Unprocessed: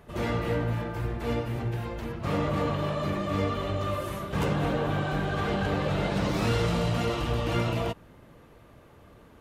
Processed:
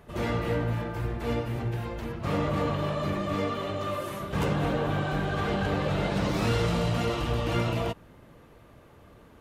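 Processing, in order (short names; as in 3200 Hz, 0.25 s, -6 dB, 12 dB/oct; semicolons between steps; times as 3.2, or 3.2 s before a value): 3.34–4.2 Bessel high-pass 150 Hz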